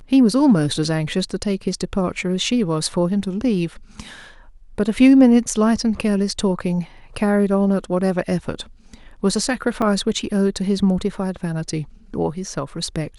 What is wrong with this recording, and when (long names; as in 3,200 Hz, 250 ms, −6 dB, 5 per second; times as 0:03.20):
0:09.82: drop-out 3.4 ms